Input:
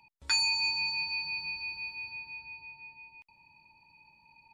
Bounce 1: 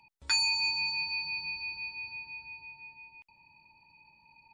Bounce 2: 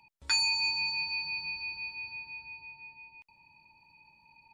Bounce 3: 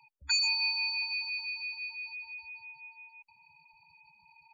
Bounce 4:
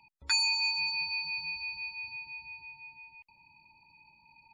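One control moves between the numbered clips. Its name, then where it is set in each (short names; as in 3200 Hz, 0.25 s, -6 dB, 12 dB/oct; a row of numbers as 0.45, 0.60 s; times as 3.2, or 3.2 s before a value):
spectral gate, under each frame's peak: -45, -55, -15, -30 dB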